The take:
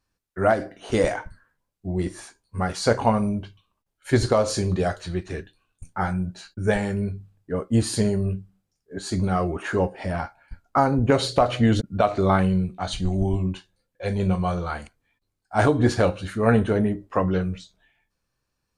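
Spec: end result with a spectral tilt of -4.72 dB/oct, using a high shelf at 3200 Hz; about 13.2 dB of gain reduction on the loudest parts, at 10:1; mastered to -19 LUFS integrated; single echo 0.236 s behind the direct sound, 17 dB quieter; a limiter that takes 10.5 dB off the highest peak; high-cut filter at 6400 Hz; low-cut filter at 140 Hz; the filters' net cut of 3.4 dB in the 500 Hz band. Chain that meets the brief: HPF 140 Hz; LPF 6400 Hz; bell 500 Hz -4.5 dB; high shelf 3200 Hz +7.5 dB; compressor 10:1, threshold -29 dBFS; limiter -24.5 dBFS; echo 0.236 s -17 dB; gain +17 dB

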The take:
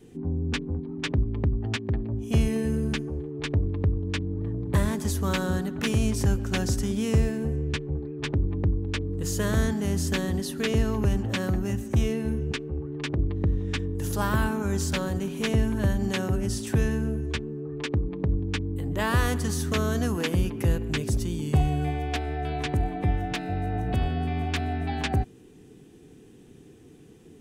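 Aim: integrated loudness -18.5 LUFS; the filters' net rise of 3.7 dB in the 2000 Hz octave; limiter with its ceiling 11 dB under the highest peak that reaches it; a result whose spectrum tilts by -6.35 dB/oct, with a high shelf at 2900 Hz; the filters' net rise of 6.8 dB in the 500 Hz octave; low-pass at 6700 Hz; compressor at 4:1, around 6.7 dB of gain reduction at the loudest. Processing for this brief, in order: LPF 6700 Hz; bell 500 Hz +8.5 dB; bell 2000 Hz +5.5 dB; high shelf 2900 Hz -3.5 dB; compressor 4:1, threshold -24 dBFS; gain +14 dB; limiter -10 dBFS

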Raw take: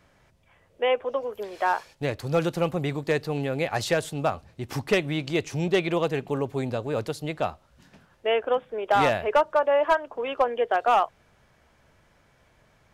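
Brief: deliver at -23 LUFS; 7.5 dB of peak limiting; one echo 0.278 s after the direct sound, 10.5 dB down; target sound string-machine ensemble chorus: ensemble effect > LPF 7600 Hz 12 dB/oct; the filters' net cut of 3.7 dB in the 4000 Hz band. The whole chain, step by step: bell 4000 Hz -5 dB; limiter -20.5 dBFS; echo 0.278 s -10.5 dB; ensemble effect; LPF 7600 Hz 12 dB/oct; gain +11.5 dB

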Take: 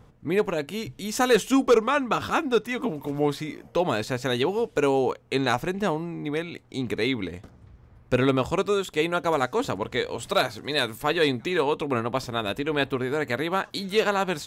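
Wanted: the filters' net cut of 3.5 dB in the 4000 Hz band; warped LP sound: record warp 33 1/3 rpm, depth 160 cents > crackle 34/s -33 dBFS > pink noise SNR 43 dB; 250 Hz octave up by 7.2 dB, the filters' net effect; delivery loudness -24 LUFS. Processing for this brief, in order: bell 250 Hz +8.5 dB; bell 4000 Hz -4 dB; record warp 33 1/3 rpm, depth 160 cents; crackle 34/s -33 dBFS; pink noise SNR 43 dB; gain -1.5 dB

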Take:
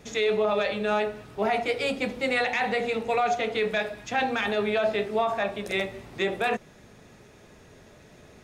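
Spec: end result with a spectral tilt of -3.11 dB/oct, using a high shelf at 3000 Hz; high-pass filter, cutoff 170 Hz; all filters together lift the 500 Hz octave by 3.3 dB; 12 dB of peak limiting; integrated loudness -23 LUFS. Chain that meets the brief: HPF 170 Hz; bell 500 Hz +4 dB; high shelf 3000 Hz +7 dB; gain +8 dB; limiter -14.5 dBFS

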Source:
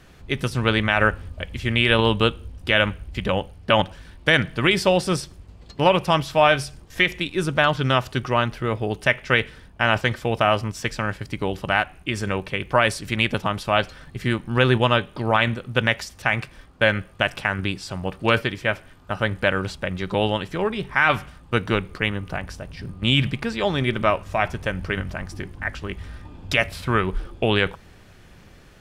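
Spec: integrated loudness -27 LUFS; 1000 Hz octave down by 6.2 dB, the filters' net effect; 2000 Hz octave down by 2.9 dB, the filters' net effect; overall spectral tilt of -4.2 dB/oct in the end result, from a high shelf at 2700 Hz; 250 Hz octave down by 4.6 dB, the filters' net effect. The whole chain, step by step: bell 250 Hz -6 dB; bell 1000 Hz -8 dB; bell 2000 Hz -3.5 dB; high shelf 2700 Hz +5.5 dB; gain -2.5 dB

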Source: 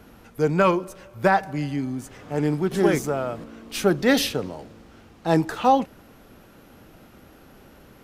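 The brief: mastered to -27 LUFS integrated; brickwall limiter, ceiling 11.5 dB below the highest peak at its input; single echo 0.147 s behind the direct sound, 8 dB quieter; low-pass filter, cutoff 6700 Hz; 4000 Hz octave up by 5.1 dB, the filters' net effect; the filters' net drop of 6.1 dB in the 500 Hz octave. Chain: LPF 6700 Hz; bell 500 Hz -8 dB; bell 4000 Hz +7 dB; limiter -16.5 dBFS; echo 0.147 s -8 dB; gain +1.5 dB

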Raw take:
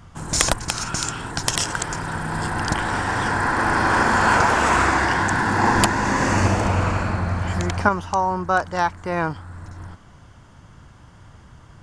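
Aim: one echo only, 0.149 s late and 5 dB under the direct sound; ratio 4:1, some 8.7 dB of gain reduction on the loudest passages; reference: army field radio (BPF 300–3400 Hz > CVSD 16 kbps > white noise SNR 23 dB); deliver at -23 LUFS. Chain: compressor 4:1, threshold -23 dBFS; BPF 300–3400 Hz; echo 0.149 s -5 dB; CVSD 16 kbps; white noise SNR 23 dB; gain +5 dB

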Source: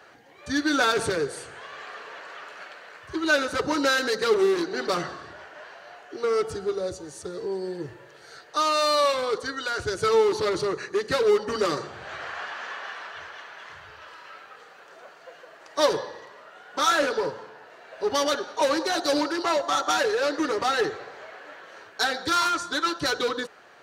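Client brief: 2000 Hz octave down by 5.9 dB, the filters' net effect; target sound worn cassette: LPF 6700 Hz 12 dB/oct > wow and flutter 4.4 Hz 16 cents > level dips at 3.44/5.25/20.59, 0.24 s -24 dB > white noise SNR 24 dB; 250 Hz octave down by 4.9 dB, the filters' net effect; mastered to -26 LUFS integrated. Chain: LPF 6700 Hz 12 dB/oct; bell 250 Hz -7 dB; bell 2000 Hz -8.5 dB; wow and flutter 4.4 Hz 16 cents; level dips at 3.44/5.25/20.59, 0.24 s -24 dB; white noise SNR 24 dB; gain +2 dB

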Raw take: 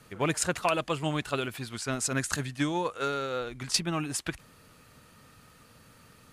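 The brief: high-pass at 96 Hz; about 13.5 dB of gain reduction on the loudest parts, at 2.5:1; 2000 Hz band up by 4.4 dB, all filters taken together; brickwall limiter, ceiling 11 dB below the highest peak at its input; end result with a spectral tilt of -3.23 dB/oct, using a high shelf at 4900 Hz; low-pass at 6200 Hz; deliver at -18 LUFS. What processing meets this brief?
HPF 96 Hz; LPF 6200 Hz; bell 2000 Hz +4.5 dB; high shelf 4900 Hz +9 dB; compressor 2.5:1, threshold -42 dBFS; gain +24.5 dB; limiter -5.5 dBFS

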